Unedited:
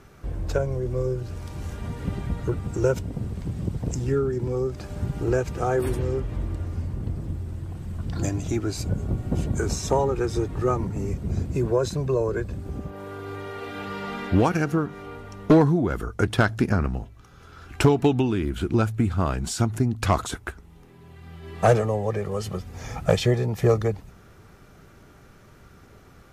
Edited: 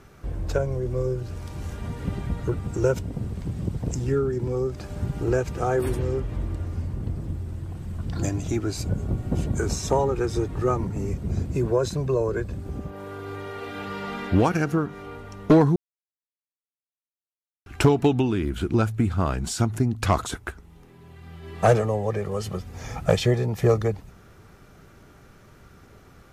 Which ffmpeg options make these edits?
-filter_complex "[0:a]asplit=3[a][b][c];[a]atrim=end=15.76,asetpts=PTS-STARTPTS,afade=t=out:st=15.756:d=0.004:c=hsin[d];[b]atrim=start=15.76:end=17.66,asetpts=PTS-STARTPTS,volume=0[e];[c]atrim=start=17.66,asetpts=PTS-STARTPTS,afade=t=in:d=0.004:c=hsin[f];[d][e][f]concat=n=3:v=0:a=1"

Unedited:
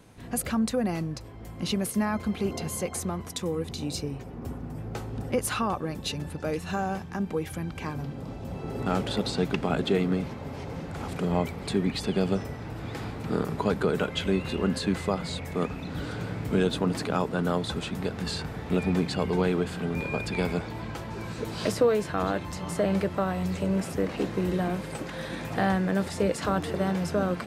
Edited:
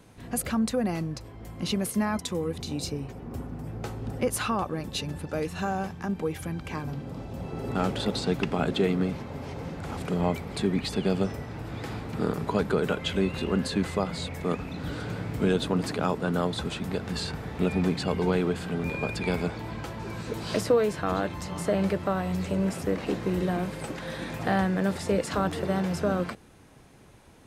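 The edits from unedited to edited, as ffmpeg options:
-filter_complex "[0:a]asplit=2[a][b];[a]atrim=end=2.192[c];[b]atrim=start=3.298[d];[c][d]acrossfade=d=0.004:c1=hsin:c2=hsin"

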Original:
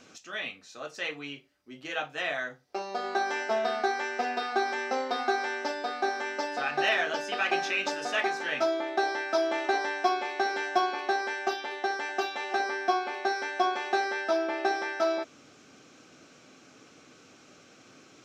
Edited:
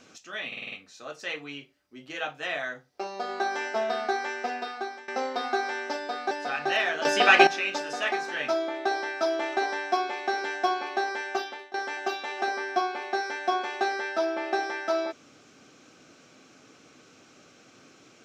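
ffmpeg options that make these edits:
-filter_complex "[0:a]asplit=11[a][b][c][d][e][f][g][h][i][j][k];[a]atrim=end=0.522[l];[b]atrim=start=0.468:end=0.522[m];[c]atrim=start=0.468:end=0.522[n];[d]atrim=start=0.468:end=0.522[o];[e]atrim=start=0.468:end=0.522[p];[f]atrim=start=0.468:end=4.83,asetpts=PTS-STARTPTS,afade=t=out:st=3.442:d=0.92:c=qsin:silence=0.112202[q];[g]atrim=start=4.83:end=6.062,asetpts=PTS-STARTPTS,afade=t=in:d=0.004:c=hsin:silence=0.112202[r];[h]atrim=start=6.428:end=7.172[s];[i]atrim=start=7.168:end=7.592,asetpts=PTS-STARTPTS,volume=11dB[t];[j]atrim=start=7.588:end=11.86,asetpts=PTS-STARTPTS,afade=t=out:st=3.962:d=0.31:silence=0.0944061[u];[k]atrim=start=11.86,asetpts=PTS-STARTPTS,afade=t=in:d=0.004:c=hsin:silence=0.0944061[v];[l][m]acrossfade=d=0.004:c1=hsin:c2=hsin[w];[w][n]acrossfade=d=0.004:c1=hsin:c2=hsin[x];[x][o]acrossfade=d=0.004:c1=hsin:c2=hsin[y];[y][p]acrossfade=d=0.004:c1=hsin:c2=hsin[z];[q][r]concat=n=2:v=0:a=1[aa];[z][aa]acrossfade=d=0.004:c1=hsin:c2=hsin[ab];[ab][s]acrossfade=d=0.004:c1=hsin:c2=hsin[ac];[ac][t]acrossfade=d=0.004:c1=hsin:c2=hsin[ad];[u][v]concat=n=2:v=0:a=1[ae];[ad][ae]acrossfade=d=0.004:c1=hsin:c2=hsin"

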